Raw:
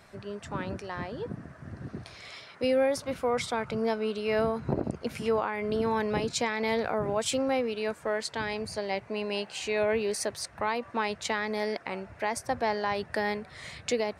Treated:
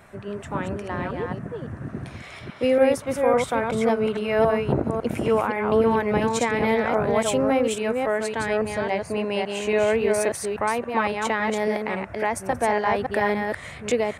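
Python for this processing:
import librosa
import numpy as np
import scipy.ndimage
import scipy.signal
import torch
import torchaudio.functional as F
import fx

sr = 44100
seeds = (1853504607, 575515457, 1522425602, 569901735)

y = fx.reverse_delay(x, sr, ms=278, wet_db=-3.5)
y = fx.peak_eq(y, sr, hz=4700.0, db=-12.5, octaves=0.81)
y = y * librosa.db_to_amplitude(6.0)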